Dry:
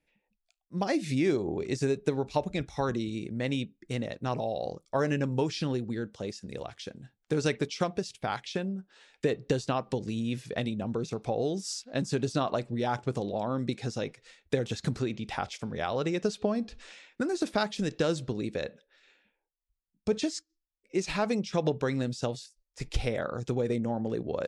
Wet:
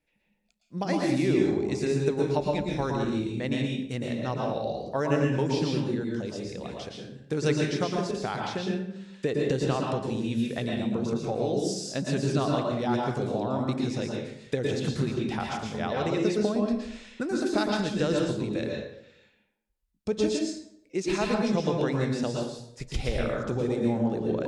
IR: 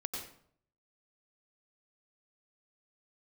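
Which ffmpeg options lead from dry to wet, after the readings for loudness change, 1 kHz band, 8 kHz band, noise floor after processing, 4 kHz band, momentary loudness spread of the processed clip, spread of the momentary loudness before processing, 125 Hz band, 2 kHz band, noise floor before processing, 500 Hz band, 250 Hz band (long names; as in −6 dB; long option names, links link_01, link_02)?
+3.0 dB, +2.0 dB, +1.5 dB, −71 dBFS, +2.0 dB, 8 LU, 8 LU, +3.5 dB, +2.0 dB, −84 dBFS, +3.0 dB, +4.5 dB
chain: -filter_complex "[1:a]atrim=start_sample=2205,asetrate=35280,aresample=44100[link_01];[0:a][link_01]afir=irnorm=-1:irlink=0"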